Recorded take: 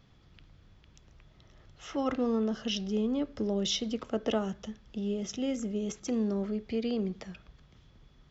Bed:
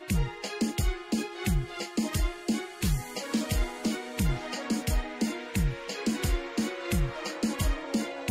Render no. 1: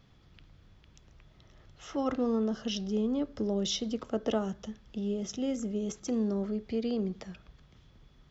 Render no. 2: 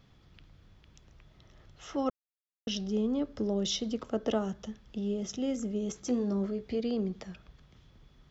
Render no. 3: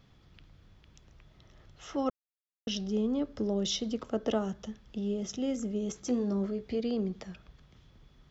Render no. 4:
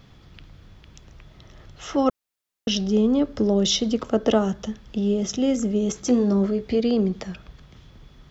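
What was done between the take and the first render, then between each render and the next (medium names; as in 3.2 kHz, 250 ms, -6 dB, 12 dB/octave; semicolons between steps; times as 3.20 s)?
dynamic bell 2.4 kHz, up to -5 dB, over -55 dBFS, Q 1.4
2.10–2.67 s: mute; 5.94–6.80 s: doubling 16 ms -7 dB
no audible change
trim +10.5 dB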